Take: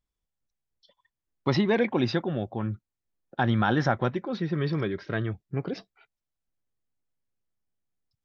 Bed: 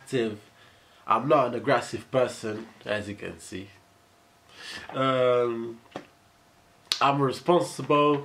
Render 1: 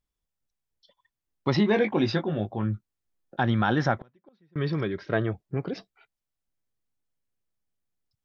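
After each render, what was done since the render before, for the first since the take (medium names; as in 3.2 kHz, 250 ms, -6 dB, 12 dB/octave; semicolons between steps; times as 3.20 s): 1.56–3.40 s: doubling 19 ms -6.5 dB; 3.99–4.56 s: inverted gate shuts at -25 dBFS, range -33 dB; 5.12–5.57 s: peaking EQ 620 Hz +8.5 dB 1.7 oct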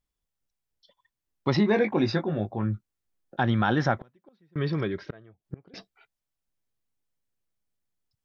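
1.57–2.73 s: peaking EQ 3.1 kHz -13 dB 0.21 oct; 4.98–5.74 s: inverted gate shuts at -22 dBFS, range -25 dB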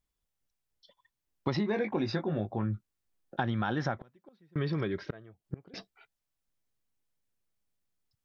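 compression 6:1, threshold -27 dBFS, peak gain reduction 9.5 dB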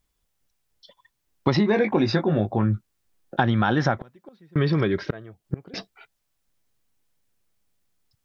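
trim +10 dB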